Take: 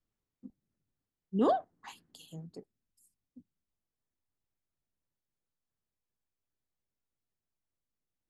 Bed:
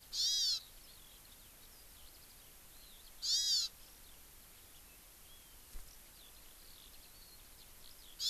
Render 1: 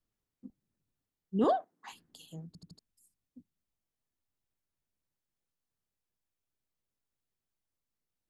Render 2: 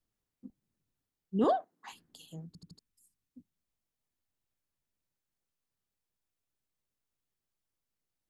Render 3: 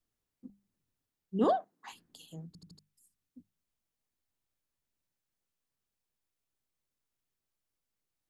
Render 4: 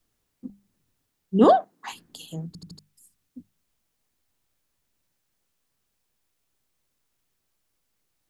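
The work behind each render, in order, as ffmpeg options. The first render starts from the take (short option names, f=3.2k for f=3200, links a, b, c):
-filter_complex "[0:a]asettb=1/sr,asplit=3[a][b][c];[a]atrim=end=1.444[d];[b]atrim=start=1.44:end=1.89,asetpts=PTS-STARTPTS,afade=t=in:d=0.004:c=qsin,afade=t=out:st=0.446:d=0.004:c=qsin,highpass=240[e];[c]atrim=start=1.886[f];[d][e]acrossfade=d=0.004:c1=hsin:c2=qsin[g];[g][f]acrossfade=d=0.004:c1=qsin:c2=hsin,asplit=5[h][i][j][k][l];[h]atrim=end=2.552[m];[i]atrim=start=2.468:end=2.552[n];[j]atrim=start=2.468:end=2.552[o];[k]atrim=start=2.468:end=2.552[p];[l]atrim=start=2.788[q];[m][n]acrossfade=d=0.004:c1=hsin:c2=hsin[r];[r][o]acrossfade=d=0.004:c1=hsin:c2=hsin[s];[s][p]acrossfade=d=0.004:c1=hsin:c2=hsin[t];[t][q]acrossfade=d=0.004:c1=hsin:c2=hsin"
-filter_complex "[0:a]asettb=1/sr,asplit=3[a][b][c];[a]atrim=end=2.514[d];[b]atrim=start=2.51:end=3.38,asetpts=PTS-STARTPTS,afade=t=in:d=0.004:c=qsin,afade=t=out:st=0.866:d=0.004:c=qsin,equalizer=f=640:t=o:w=0.38:g=-9[e];[c]atrim=start=3.376[f];[d][e]acrossfade=d=0.004:c1=hsin:c2=qsin[g];[g][f]acrossfade=d=0.004:c1=qsin:c2=hsin"
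-af "bandreject=f=50:t=h:w=6,bandreject=f=100:t=h:w=6,bandreject=f=150:t=h:w=6,bandreject=f=200:t=h:w=6"
-af "volume=11.5dB"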